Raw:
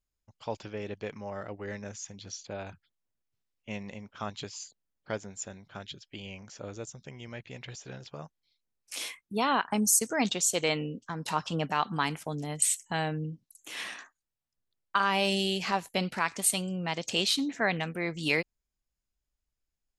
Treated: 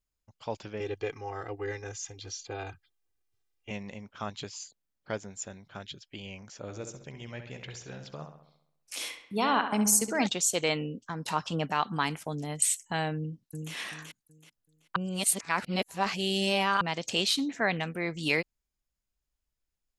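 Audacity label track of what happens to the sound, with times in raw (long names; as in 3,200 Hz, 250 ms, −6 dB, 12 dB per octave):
0.800000	3.710000	comb filter 2.5 ms, depth 96%
6.630000	10.270000	feedback echo with a low-pass in the loop 67 ms, feedback 55%, low-pass 4,100 Hz, level −8 dB
13.150000	13.730000	delay throw 380 ms, feedback 30%, level −4 dB
14.960000	16.810000	reverse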